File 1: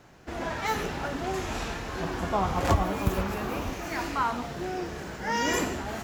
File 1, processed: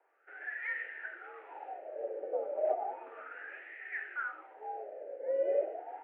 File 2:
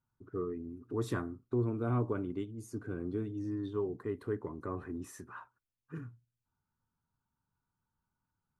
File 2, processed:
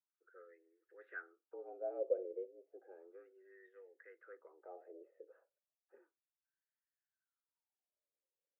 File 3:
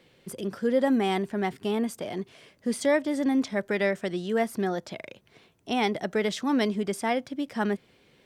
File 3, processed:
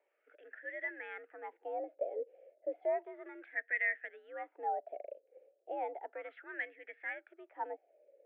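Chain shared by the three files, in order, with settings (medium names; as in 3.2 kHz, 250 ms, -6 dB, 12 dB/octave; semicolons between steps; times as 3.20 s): wah-wah 0.33 Hz 450–1800 Hz, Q 9.4; mistuned SSB +75 Hz 250–2500 Hz; static phaser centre 440 Hz, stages 4; trim +8 dB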